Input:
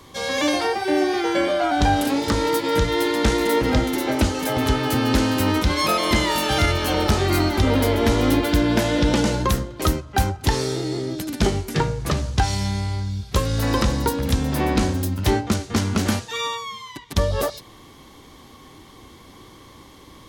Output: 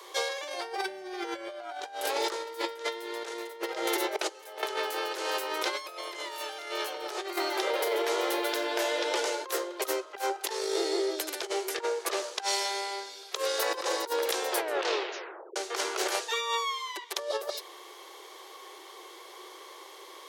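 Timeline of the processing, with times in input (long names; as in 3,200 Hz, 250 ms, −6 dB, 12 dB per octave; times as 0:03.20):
0:04.16–0:04.63: noise gate −19 dBFS, range −22 dB
0:07.36–0:09.45: tuned comb filter 110 Hz, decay 0.39 s
0:14.50: tape stop 1.06 s
whole clip: Butterworth high-pass 350 Hz 96 dB per octave; compressor whose output falls as the input rises −28 dBFS, ratio −0.5; level −3 dB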